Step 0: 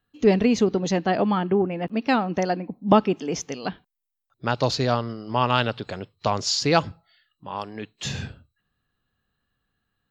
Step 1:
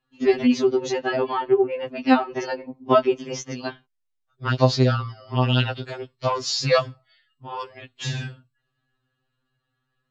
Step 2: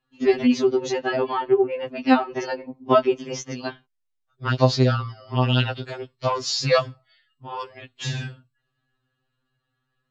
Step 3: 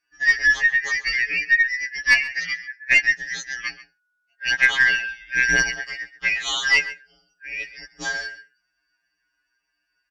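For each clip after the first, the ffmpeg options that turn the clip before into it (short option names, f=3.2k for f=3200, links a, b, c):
-af "lowpass=6.6k,afftfilt=real='re*2.45*eq(mod(b,6),0)':imag='im*2.45*eq(mod(b,6),0)':win_size=2048:overlap=0.75,volume=3dB"
-af anull
-filter_complex "[0:a]afftfilt=real='real(if(lt(b,272),68*(eq(floor(b/68),0)*2+eq(floor(b/68),1)*0+eq(floor(b/68),2)*3+eq(floor(b/68),3)*1)+mod(b,68),b),0)':imag='imag(if(lt(b,272),68*(eq(floor(b/68),0)*2+eq(floor(b/68),1)*0+eq(floor(b/68),2)*3+eq(floor(b/68),3)*1)+mod(b,68),b),0)':win_size=2048:overlap=0.75,aeval=exprs='0.891*(cos(1*acos(clip(val(0)/0.891,-1,1)))-cos(1*PI/2))+0.0316*(cos(4*acos(clip(val(0)/0.891,-1,1)))-cos(4*PI/2))+0.0447*(cos(5*acos(clip(val(0)/0.891,-1,1)))-cos(5*PI/2))':c=same,asplit=2[a][b];[b]adelay=134.1,volume=-16dB,highshelf=f=4k:g=-3.02[c];[a][c]amix=inputs=2:normalize=0,volume=-1dB"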